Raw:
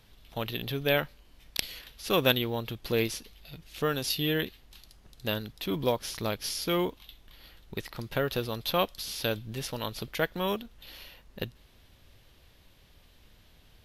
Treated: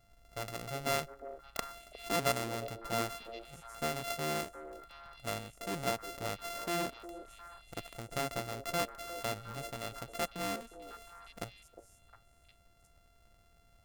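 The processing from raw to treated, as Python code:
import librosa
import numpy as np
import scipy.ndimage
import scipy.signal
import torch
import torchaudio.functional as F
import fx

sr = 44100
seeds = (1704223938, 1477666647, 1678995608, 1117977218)

y = np.r_[np.sort(x[:len(x) // 64 * 64].reshape(-1, 64), axis=1).ravel(), x[len(x) // 64 * 64:]]
y = fx.echo_stepped(y, sr, ms=357, hz=460.0, octaves=1.4, feedback_pct=70, wet_db=-7.5)
y = F.gain(torch.from_numpy(y), -7.0).numpy()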